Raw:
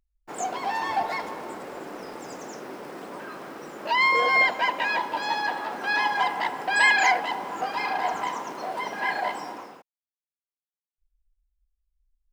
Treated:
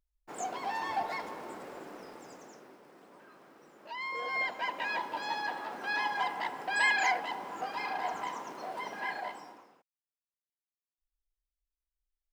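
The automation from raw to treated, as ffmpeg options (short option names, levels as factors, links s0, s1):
-af "volume=1.41,afade=t=out:st=1.65:d=1.15:silence=0.281838,afade=t=in:st=4.04:d=0.92:silence=0.316228,afade=t=out:st=8.93:d=0.71:silence=0.354813"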